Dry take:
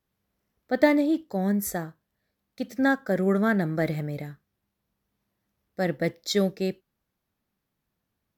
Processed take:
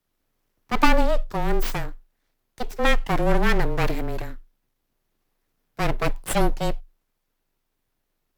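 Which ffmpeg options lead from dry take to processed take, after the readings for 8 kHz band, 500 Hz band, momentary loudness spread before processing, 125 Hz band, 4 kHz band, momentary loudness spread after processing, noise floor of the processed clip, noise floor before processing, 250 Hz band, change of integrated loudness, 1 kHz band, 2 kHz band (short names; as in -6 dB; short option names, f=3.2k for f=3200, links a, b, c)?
+2.0 dB, 0.0 dB, 15 LU, +2.0 dB, +4.5 dB, 15 LU, -76 dBFS, -82 dBFS, -3.5 dB, +1.0 dB, +8.0 dB, +3.0 dB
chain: -af "aeval=exprs='abs(val(0))':c=same,afreqshift=-22,volume=5.5dB"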